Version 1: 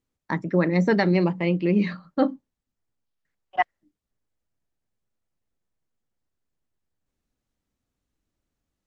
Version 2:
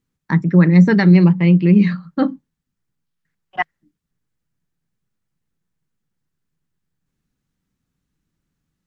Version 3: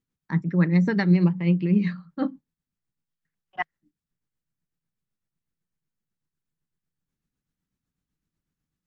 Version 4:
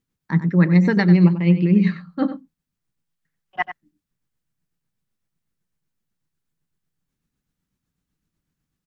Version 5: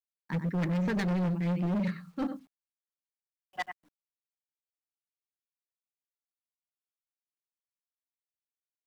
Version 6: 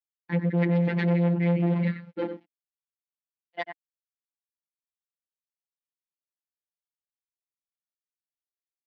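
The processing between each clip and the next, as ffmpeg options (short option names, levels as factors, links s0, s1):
-af "equalizer=f=160:t=o:w=0.67:g=12,equalizer=f=630:t=o:w=0.67:g=-7,equalizer=f=1600:t=o:w=0.67:g=3,volume=1.5"
-af "tremolo=f=8:d=0.49,volume=0.447"
-filter_complex "[0:a]asplit=2[s0][s1];[s1]adelay=93.29,volume=0.282,highshelf=f=4000:g=-2.1[s2];[s0][s2]amix=inputs=2:normalize=0,volume=1.78"
-af "acrusher=bits=9:mix=0:aa=0.000001,asoftclip=type=hard:threshold=0.112,volume=0.398"
-af "aeval=exprs='sgn(val(0))*max(abs(val(0))-0.00126,0)':c=same,afftfilt=real='hypot(re,im)*cos(PI*b)':imag='0':win_size=1024:overlap=0.75,highpass=120,equalizer=f=300:t=q:w=4:g=5,equalizer=f=490:t=q:w=4:g=5,equalizer=f=1200:t=q:w=4:g=-8,equalizer=f=2100:t=q:w=4:g=6,lowpass=f=3700:w=0.5412,lowpass=f=3700:w=1.3066,volume=2.24"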